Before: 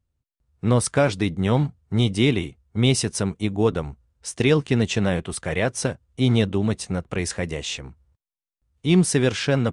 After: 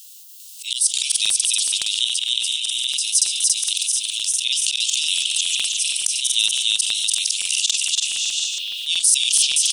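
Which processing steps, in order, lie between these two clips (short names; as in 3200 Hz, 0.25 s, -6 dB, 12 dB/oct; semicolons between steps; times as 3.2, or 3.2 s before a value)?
tilt +2.5 dB/oct; spring tank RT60 2.7 s, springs 53 ms, chirp 75 ms, DRR 16.5 dB; auto swell 0.209 s; 2.04–3.08 level quantiser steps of 20 dB; steep high-pass 2800 Hz 72 dB/oct; high shelf 4100 Hz +5.5 dB; bouncing-ball echo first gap 0.29 s, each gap 0.7×, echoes 5; crackling interface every 0.14 s, samples 2048, repeat, from 0.93; fast leveller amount 70%; gain -1.5 dB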